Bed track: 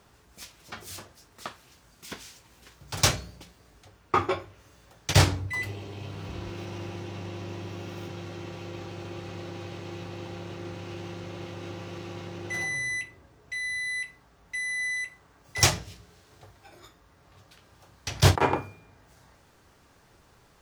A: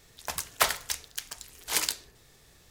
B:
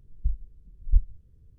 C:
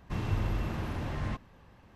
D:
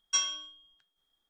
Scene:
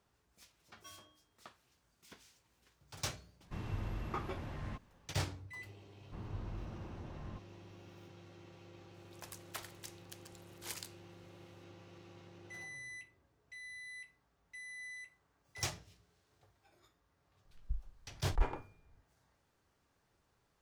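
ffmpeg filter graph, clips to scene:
-filter_complex "[3:a]asplit=2[a][b];[0:a]volume=-17.5dB[c];[4:a]bandpass=f=390:t=q:w=1.4:csg=0[d];[b]lowpass=1.4k[e];[1:a]alimiter=limit=-10.5dB:level=0:latency=1:release=398[f];[d]atrim=end=1.29,asetpts=PTS-STARTPTS,volume=-6.5dB,afade=t=in:d=0.004:c=hsin,afade=t=out:st=1.286:d=0.004:c=hsin,adelay=710[g];[a]atrim=end=1.95,asetpts=PTS-STARTPTS,volume=-9.5dB,afade=t=in:d=0.004:c=hsin,afade=t=out:st=1.946:d=0.004:c=hsin,adelay=150381S[h];[e]atrim=end=1.95,asetpts=PTS-STARTPTS,volume=-13dB,afade=t=in:d=0.004:c=hsin,afade=t=out:st=1.946:d=0.004:c=hsin,adelay=6020[i];[f]atrim=end=2.7,asetpts=PTS-STARTPTS,volume=-17dB,afade=t=in:d=0.004:c=hsin,afade=t=out:st=2.696:d=0.004:c=hsin,adelay=8940[j];[2:a]atrim=end=1.58,asetpts=PTS-STARTPTS,volume=-12dB,afade=t=in:d=0.004:c=hsin,afade=t=out:st=1.576:d=0.004:c=hsin,adelay=17450[k];[c][g][h][i][j][k]amix=inputs=6:normalize=0"

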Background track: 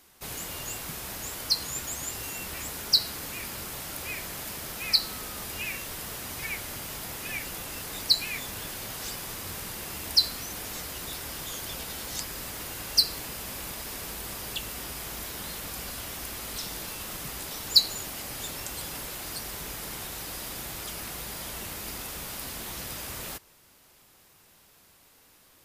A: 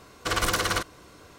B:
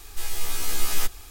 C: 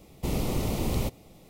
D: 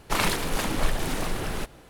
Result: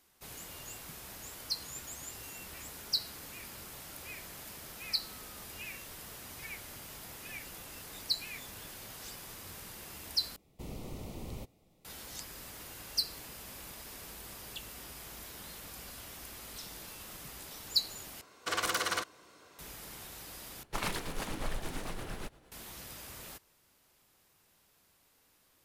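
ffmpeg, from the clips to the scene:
-filter_complex "[0:a]volume=-10dB[a];[1:a]highpass=f=400:p=1[b];[4:a]tremolo=f=8.7:d=0.47[c];[a]asplit=4[d][e][f][g];[d]atrim=end=10.364[h];[3:a]atrim=end=1.49,asetpts=PTS-STARTPTS,volume=-15dB[i];[e]atrim=start=11.846:end=18.214[j];[b]atrim=end=1.38,asetpts=PTS-STARTPTS,volume=-6dB[k];[f]atrim=start=19.586:end=20.634[l];[c]atrim=end=1.89,asetpts=PTS-STARTPTS,volume=-9dB[m];[g]atrim=start=22.516[n];[h][i]acrossfade=d=0.004:c1=hsin:c2=hsin[o];[o][j]acrossfade=d=0.004:c1=hsin:c2=hsin[p];[p][k]acrossfade=d=0.004:c1=hsin:c2=hsin[q];[q][l]acrossfade=d=0.004:c1=hsin:c2=hsin[r];[r][m]acrossfade=d=0.004:c1=hsin:c2=hsin[s];[s][n]acrossfade=d=0.004:c1=hsin:c2=hsin"

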